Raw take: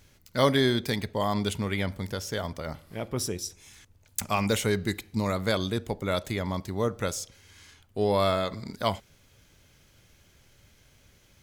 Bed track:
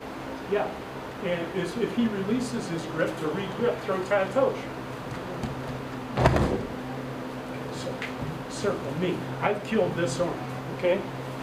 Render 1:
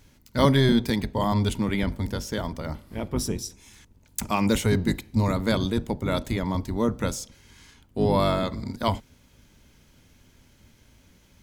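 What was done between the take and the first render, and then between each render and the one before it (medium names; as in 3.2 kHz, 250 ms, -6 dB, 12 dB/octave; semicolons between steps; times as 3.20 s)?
octave divider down 1 oct, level +1 dB; small resonant body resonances 240/930 Hz, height 7 dB, ringing for 30 ms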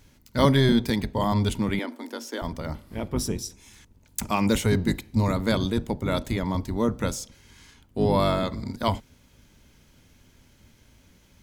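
1.79–2.42 s: rippled Chebyshev high-pass 230 Hz, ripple 3 dB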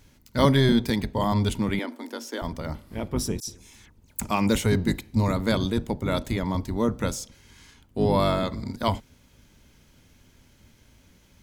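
3.40–4.20 s: phase dispersion lows, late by 73 ms, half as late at 2.7 kHz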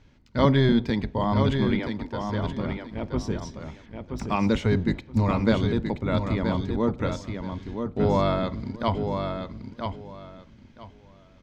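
distance through air 180 m; feedback delay 976 ms, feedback 21%, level -6 dB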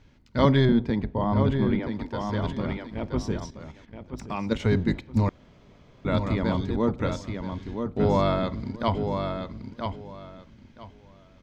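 0.65–1.93 s: treble shelf 2.4 kHz -12 dB; 3.46–4.60 s: level held to a coarse grid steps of 10 dB; 5.29–6.05 s: room tone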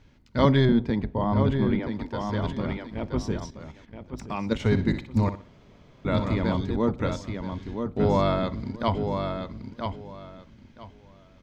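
4.55–6.49 s: flutter echo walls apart 10.6 m, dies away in 0.35 s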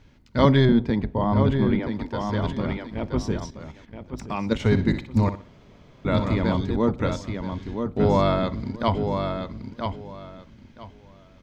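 trim +2.5 dB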